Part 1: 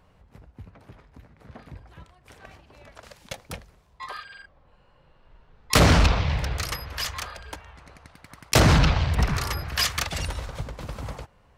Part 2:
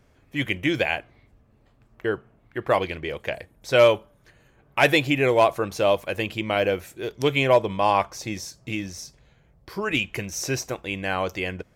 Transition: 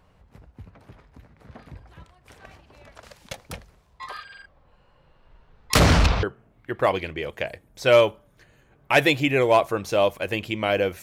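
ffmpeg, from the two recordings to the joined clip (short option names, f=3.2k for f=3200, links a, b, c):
-filter_complex "[0:a]apad=whole_dur=11.02,atrim=end=11.02,atrim=end=6.232[a];[1:a]atrim=start=2.098:end=6.89[b];[a][b]acrossfade=d=0.004:c1=hsin:c2=hsin"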